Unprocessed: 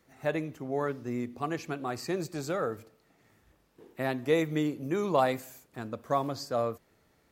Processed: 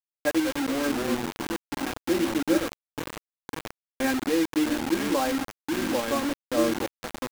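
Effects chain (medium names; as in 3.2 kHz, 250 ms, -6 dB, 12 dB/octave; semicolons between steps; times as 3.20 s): local Wiener filter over 41 samples; ever faster or slower copies 166 ms, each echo -2 st, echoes 3, each echo -6 dB; low-pass 4.3 kHz 12 dB/octave; peaking EQ 100 Hz +5 dB 0.44 oct; hum notches 50/100/150/200/250/300/350/400 Hz; small resonant body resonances 330/1600/2300 Hz, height 11 dB, ringing for 35 ms; random-step tremolo 3.5 Hz, depth 70%; gain riding within 4 dB 2 s; comb 3.7 ms, depth 93%; bit crusher 5-bit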